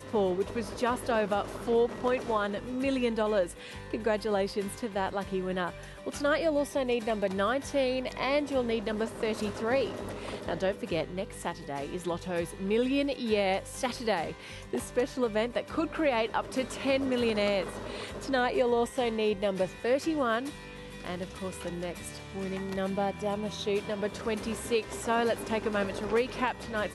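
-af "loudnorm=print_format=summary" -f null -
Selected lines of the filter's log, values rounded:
Input Integrated:    -30.8 LUFS
Input True Peak:     -15.3 dBTP
Input LRA:             3.6 LU
Input Threshold:     -40.9 LUFS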